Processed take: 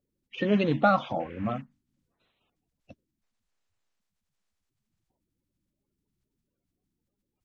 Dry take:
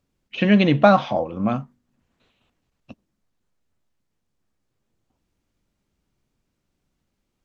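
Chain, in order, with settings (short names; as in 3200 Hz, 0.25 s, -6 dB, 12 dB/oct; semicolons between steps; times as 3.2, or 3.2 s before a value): bin magnitudes rounded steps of 30 dB; 1.19–1.6 band noise 1400–2700 Hz -46 dBFS; gain -7.5 dB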